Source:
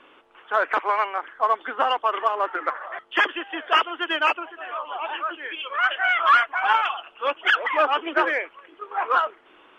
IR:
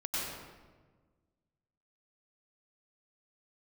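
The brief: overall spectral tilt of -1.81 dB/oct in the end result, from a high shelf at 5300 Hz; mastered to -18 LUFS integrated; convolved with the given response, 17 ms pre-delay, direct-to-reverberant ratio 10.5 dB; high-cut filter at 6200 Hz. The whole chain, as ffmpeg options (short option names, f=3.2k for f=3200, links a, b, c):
-filter_complex "[0:a]lowpass=6.2k,highshelf=f=5.3k:g=-5.5,asplit=2[a][b];[1:a]atrim=start_sample=2205,adelay=17[c];[b][c]afir=irnorm=-1:irlink=0,volume=-15.5dB[d];[a][d]amix=inputs=2:normalize=0,volume=5dB"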